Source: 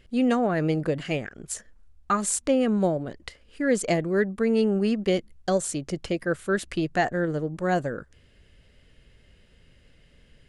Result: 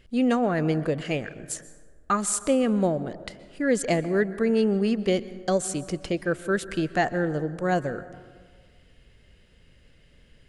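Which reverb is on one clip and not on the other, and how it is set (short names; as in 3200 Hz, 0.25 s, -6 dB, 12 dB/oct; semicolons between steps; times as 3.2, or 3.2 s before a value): plate-style reverb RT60 1.6 s, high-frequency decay 0.4×, pre-delay 0.11 s, DRR 15 dB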